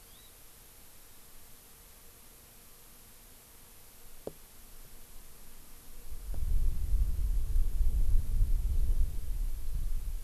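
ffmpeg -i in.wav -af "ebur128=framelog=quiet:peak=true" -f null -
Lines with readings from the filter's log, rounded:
Integrated loudness:
  I:         -36.6 LUFS
  Threshold: -50.0 LUFS
Loudness range:
  LRA:        18.4 LU
  Threshold: -60.1 LUFS
  LRA low:   -53.7 LUFS
  LRA high:  -35.4 LUFS
True peak:
  Peak:      -13.7 dBFS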